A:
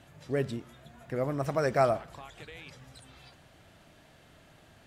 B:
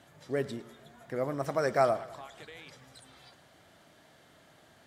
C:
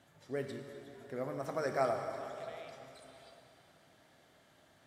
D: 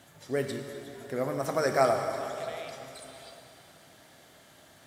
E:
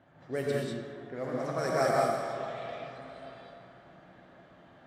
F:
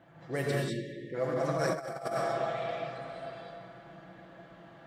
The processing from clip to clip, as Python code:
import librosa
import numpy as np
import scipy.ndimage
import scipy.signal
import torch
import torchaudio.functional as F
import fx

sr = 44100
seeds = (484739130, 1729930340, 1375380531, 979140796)

y1 = fx.highpass(x, sr, hz=230.0, slope=6)
y1 = fx.peak_eq(y1, sr, hz=2600.0, db=-7.0, octaves=0.21)
y1 = fx.echo_feedback(y1, sr, ms=104, feedback_pct=57, wet_db=-19.0)
y2 = fx.rev_plate(y1, sr, seeds[0], rt60_s=3.3, hf_ratio=0.9, predelay_ms=0, drr_db=4.0)
y2 = y2 * librosa.db_to_amplitude(-7.0)
y3 = fx.high_shelf(y2, sr, hz=5100.0, db=8.5)
y3 = y3 * librosa.db_to_amplitude(8.0)
y4 = fx.rider(y3, sr, range_db=5, speed_s=2.0)
y4 = fx.env_lowpass(y4, sr, base_hz=1500.0, full_db=-21.0)
y4 = fx.rev_gated(y4, sr, seeds[1], gate_ms=230, shape='rising', drr_db=-3.0)
y4 = y4 * librosa.db_to_amplitude(-7.5)
y5 = fx.spec_erase(y4, sr, start_s=0.69, length_s=0.45, low_hz=610.0, high_hz=1700.0)
y5 = y5 + 0.57 * np.pad(y5, (int(6.0 * sr / 1000.0), 0))[:len(y5)]
y5 = fx.over_compress(y5, sr, threshold_db=-30.0, ratio=-0.5)